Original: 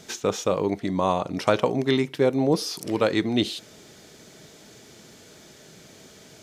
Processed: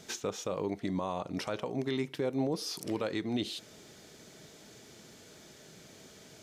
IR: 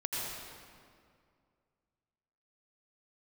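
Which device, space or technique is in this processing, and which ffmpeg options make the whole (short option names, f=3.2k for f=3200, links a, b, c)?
stacked limiters: -af "alimiter=limit=-11.5dB:level=0:latency=1:release=348,alimiter=limit=-17.5dB:level=0:latency=1:release=170,volume=-5dB"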